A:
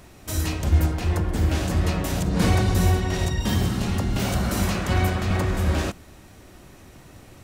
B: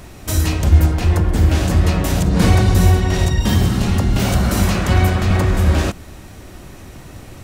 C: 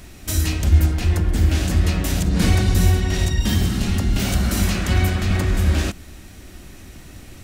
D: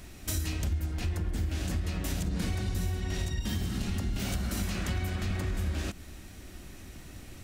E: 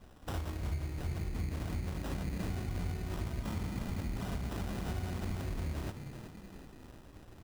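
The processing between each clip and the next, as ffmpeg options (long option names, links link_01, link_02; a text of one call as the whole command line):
ffmpeg -i in.wav -filter_complex "[0:a]lowshelf=frequency=110:gain=4.5,asplit=2[link_01][link_02];[link_02]acompressor=threshold=-26dB:ratio=6,volume=-2.5dB[link_03];[link_01][link_03]amix=inputs=2:normalize=0,volume=3.5dB" out.wav
ffmpeg -i in.wav -af "equalizer=frequency=125:width_type=o:width=1:gain=-6,equalizer=frequency=500:width_type=o:width=1:gain=-6,equalizer=frequency=1000:width_type=o:width=1:gain=-7,volume=-1dB" out.wav
ffmpeg -i in.wav -af "acompressor=threshold=-22dB:ratio=6,volume=-6dB" out.wav
ffmpeg -i in.wav -filter_complex "[0:a]asplit=6[link_01][link_02][link_03][link_04][link_05][link_06];[link_02]adelay=375,afreqshift=59,volume=-10dB[link_07];[link_03]adelay=750,afreqshift=118,volume=-16.4dB[link_08];[link_04]adelay=1125,afreqshift=177,volume=-22.8dB[link_09];[link_05]adelay=1500,afreqshift=236,volume=-29.1dB[link_10];[link_06]adelay=1875,afreqshift=295,volume=-35.5dB[link_11];[link_01][link_07][link_08][link_09][link_10][link_11]amix=inputs=6:normalize=0,acrusher=samples=20:mix=1:aa=0.000001,aeval=exprs='sgn(val(0))*max(abs(val(0))-0.00211,0)':channel_layout=same,volume=-5.5dB" out.wav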